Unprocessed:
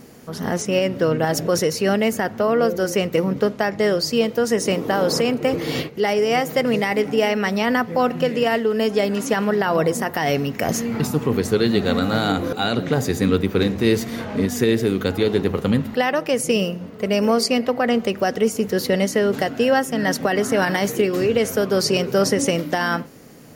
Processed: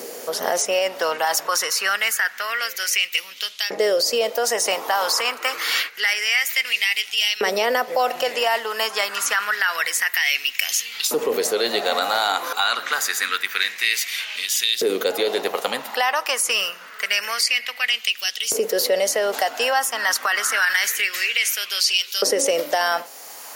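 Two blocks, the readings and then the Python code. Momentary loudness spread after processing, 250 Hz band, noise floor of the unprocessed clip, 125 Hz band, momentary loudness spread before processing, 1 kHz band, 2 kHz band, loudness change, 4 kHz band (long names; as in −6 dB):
4 LU, −18.0 dB, −36 dBFS, below −25 dB, 4 LU, +0.5 dB, +5.5 dB, −0.5 dB, +7.0 dB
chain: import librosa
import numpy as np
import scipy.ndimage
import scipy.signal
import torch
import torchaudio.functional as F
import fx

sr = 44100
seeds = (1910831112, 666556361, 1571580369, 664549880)

p1 = fx.high_shelf(x, sr, hz=3000.0, db=10.0)
p2 = fx.filter_lfo_highpass(p1, sr, shape='saw_up', hz=0.27, low_hz=450.0, high_hz=3600.0, q=2.8)
p3 = fx.over_compress(p2, sr, threshold_db=-20.0, ratio=-1.0)
p4 = p2 + (p3 * librosa.db_to_amplitude(-2.5))
p5 = fx.low_shelf(p4, sr, hz=61.0, db=-8.5)
p6 = fx.band_squash(p5, sr, depth_pct=40)
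y = p6 * librosa.db_to_amplitude(-6.5)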